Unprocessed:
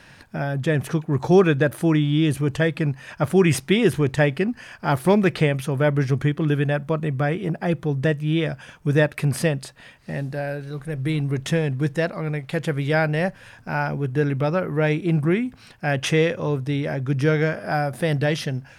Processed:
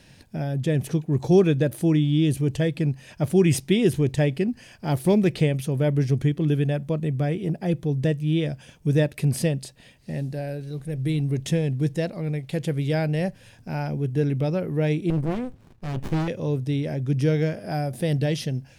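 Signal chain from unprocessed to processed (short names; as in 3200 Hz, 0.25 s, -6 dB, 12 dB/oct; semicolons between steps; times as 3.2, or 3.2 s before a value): bell 1300 Hz -14.5 dB 1.5 oct; 15.1–16.28 running maximum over 65 samples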